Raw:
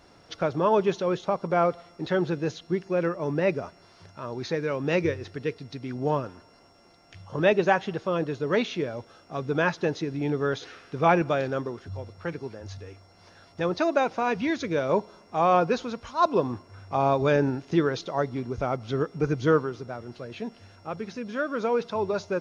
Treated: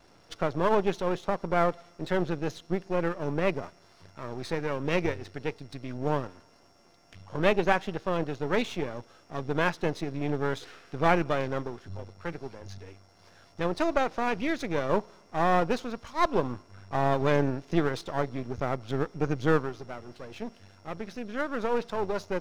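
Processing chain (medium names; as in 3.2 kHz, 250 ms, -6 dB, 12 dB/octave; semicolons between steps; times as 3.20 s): partial rectifier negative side -12 dB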